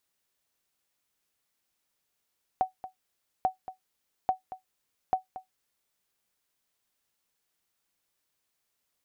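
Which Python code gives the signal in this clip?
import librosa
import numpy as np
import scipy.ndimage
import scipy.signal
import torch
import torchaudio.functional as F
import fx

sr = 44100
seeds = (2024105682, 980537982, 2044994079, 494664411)

y = fx.sonar_ping(sr, hz=751.0, decay_s=0.13, every_s=0.84, pings=4, echo_s=0.23, echo_db=-14.5, level_db=-16.0)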